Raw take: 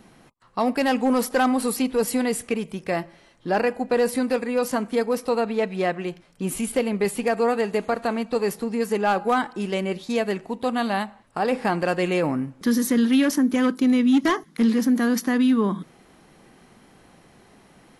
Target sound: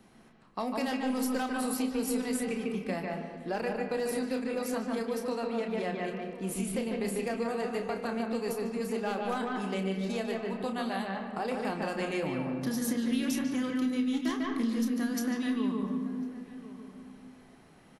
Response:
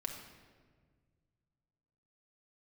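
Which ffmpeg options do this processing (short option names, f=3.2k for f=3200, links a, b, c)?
-filter_complex "[0:a]asplit=2[a][b];[b]adelay=31,volume=-8dB[c];[a][c]amix=inputs=2:normalize=0,asplit=2[d][e];[e]lowpass=3.8k[f];[1:a]atrim=start_sample=2205,adelay=147[g];[f][g]afir=irnorm=-1:irlink=0,volume=-1.5dB[h];[d][h]amix=inputs=2:normalize=0,acrossover=split=130|3000[i][j][k];[j]acompressor=threshold=-23dB:ratio=3[l];[i][l][k]amix=inputs=3:normalize=0,asplit=2[m][n];[n]adelay=1050,volume=-15dB,highshelf=f=4k:g=-23.6[o];[m][o]amix=inputs=2:normalize=0,volume=-8dB"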